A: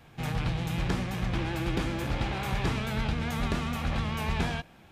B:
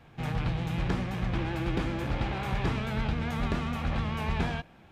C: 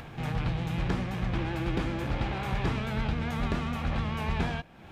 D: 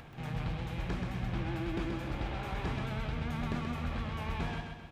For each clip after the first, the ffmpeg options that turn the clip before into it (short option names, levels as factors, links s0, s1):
-af "highshelf=f=4800:g=-10.5"
-af "acompressor=mode=upward:threshold=0.02:ratio=2.5"
-af "aecho=1:1:130|260|390|520|650|780:0.562|0.276|0.135|0.0662|0.0324|0.0159,volume=0.447"